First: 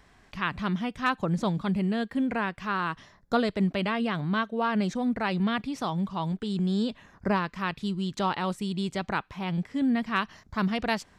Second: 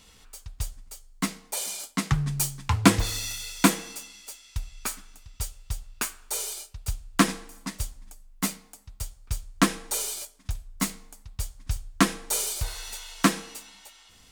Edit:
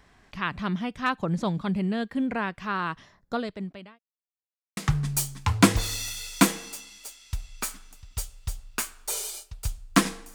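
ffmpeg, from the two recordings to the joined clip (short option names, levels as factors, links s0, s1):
-filter_complex "[0:a]apad=whole_dur=10.34,atrim=end=10.34,asplit=2[s0][s1];[s0]atrim=end=3.99,asetpts=PTS-STARTPTS,afade=t=out:st=2.92:d=1.07[s2];[s1]atrim=start=3.99:end=4.77,asetpts=PTS-STARTPTS,volume=0[s3];[1:a]atrim=start=2:end=7.57,asetpts=PTS-STARTPTS,afade=t=in:d=0.004:c=hsin[s4];[s2][s3][s4]concat=n=3:v=0:a=1"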